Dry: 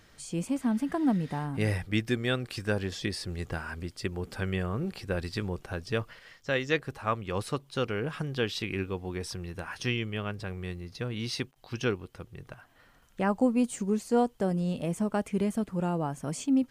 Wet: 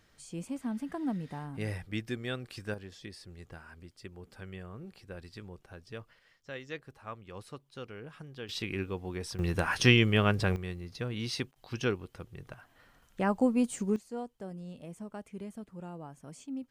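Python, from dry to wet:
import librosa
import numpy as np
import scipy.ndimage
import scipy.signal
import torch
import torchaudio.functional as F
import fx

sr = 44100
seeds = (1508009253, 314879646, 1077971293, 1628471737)

y = fx.gain(x, sr, db=fx.steps((0.0, -7.5), (2.74, -13.5), (8.49, -2.5), (9.39, 8.5), (10.56, -1.5), (13.96, -14.0)))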